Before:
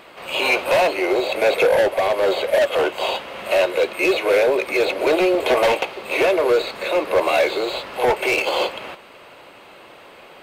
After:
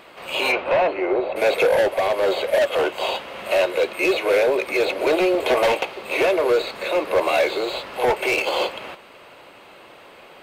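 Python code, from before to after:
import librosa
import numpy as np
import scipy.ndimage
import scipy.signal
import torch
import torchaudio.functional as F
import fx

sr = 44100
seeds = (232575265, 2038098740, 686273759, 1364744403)

y = fx.lowpass(x, sr, hz=fx.line((0.51, 2800.0), (1.35, 1400.0)), slope=12, at=(0.51, 1.35), fade=0.02)
y = F.gain(torch.from_numpy(y), -1.5).numpy()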